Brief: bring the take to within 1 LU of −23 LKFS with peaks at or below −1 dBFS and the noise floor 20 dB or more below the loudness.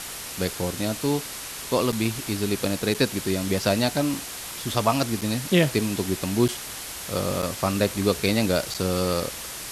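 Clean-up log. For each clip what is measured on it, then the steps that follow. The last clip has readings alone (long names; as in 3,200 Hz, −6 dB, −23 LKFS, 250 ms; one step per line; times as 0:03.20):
number of dropouts 6; longest dropout 6.5 ms; background noise floor −36 dBFS; target noise floor −45 dBFS; integrated loudness −25.0 LKFS; sample peak −6.0 dBFS; target loudness −23.0 LKFS
→ repair the gap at 0:01.92/0:02.94/0:05.21/0:06.48/0:07.42/0:08.74, 6.5 ms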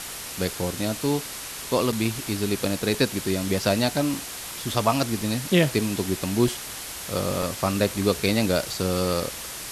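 number of dropouts 0; background noise floor −36 dBFS; target noise floor −45 dBFS
→ broadband denoise 9 dB, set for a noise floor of −36 dBFS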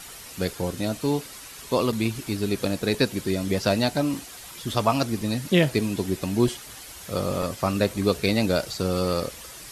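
background noise floor −42 dBFS; target noise floor −46 dBFS
→ broadband denoise 6 dB, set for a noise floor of −42 dBFS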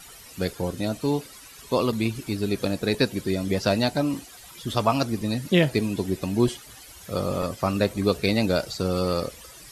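background noise floor −46 dBFS; integrated loudness −25.5 LKFS; sample peak −6.5 dBFS; target loudness −23.0 LKFS
→ level +2.5 dB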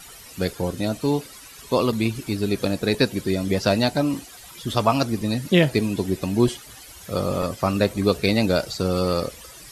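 integrated loudness −23.0 LKFS; sample peak −4.0 dBFS; background noise floor −44 dBFS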